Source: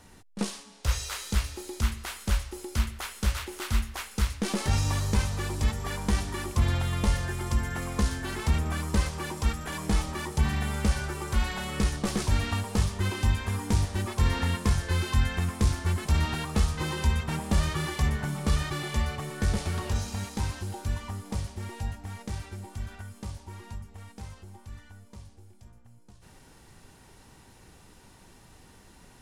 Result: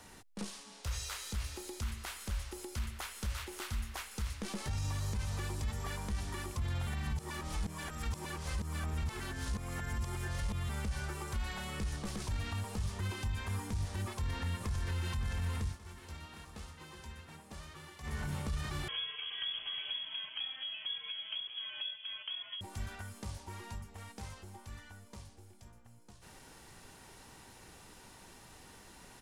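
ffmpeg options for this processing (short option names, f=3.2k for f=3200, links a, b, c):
-filter_complex "[0:a]asplit=2[a][b];[b]afade=t=in:st=14.03:d=0.01,afade=t=out:st=14.99:d=0.01,aecho=0:1:570|1140|1710|2280|2850|3420|3990|4560|5130|5700|6270|6840:0.530884|0.451252|0.383564|0.326029|0.277125|0.235556|0.200223|0.170189|0.144661|0.122962|0.104518|0.0888399[c];[a][c]amix=inputs=2:normalize=0,asettb=1/sr,asplit=3[d][e][f];[d]atrim=end=18.884[g];[e]atrim=start=18.88:end=22.61,asetpts=PTS-STARTPTS,afade=t=in:d=0.004:c=qsin,afade=t=out:st=3.726:d=0.004:c=qsin,lowpass=f=2.9k:t=q:w=0.5098,lowpass=f=2.9k:t=q:w=0.6013,lowpass=f=2.9k:t=q:w=0.9,lowpass=f=2.9k:t=q:w=2.563,afreqshift=-3400[h];[f]atrim=start=22.606[i];[g][h]acrossfade=d=0.004:c1=hsin:c2=qsin[j];[j][i]acrossfade=d=0.004:c1=qsin:c2=hsin,asplit=5[k][l][m][n][o];[k]atrim=end=6.872[p];[l]atrim=start=6.868:end=10.692,asetpts=PTS-STARTPTS,areverse[q];[m]atrim=start=10.688:end=15.79,asetpts=PTS-STARTPTS,afade=t=out:st=4.872:d=0.23:silence=0.1[r];[n]atrim=start=15.79:end=18.03,asetpts=PTS-STARTPTS,volume=-20dB[s];[o]atrim=start=18.03,asetpts=PTS-STARTPTS,afade=t=in:d=0.23:silence=0.1[t];[p][q]acrossfade=d=0.004:c1=hsin:c2=hsin[u];[r][s][t]concat=n=3:v=0:a=1[v];[u][v]acrossfade=d=0.004:c1=hsin:c2=hsin,acrossover=split=160[w][x];[x]acompressor=threshold=-43dB:ratio=3[y];[w][y]amix=inputs=2:normalize=0,lowshelf=f=320:g=-7,alimiter=level_in=6dB:limit=-24dB:level=0:latency=1:release=30,volume=-6dB,volume=1.5dB"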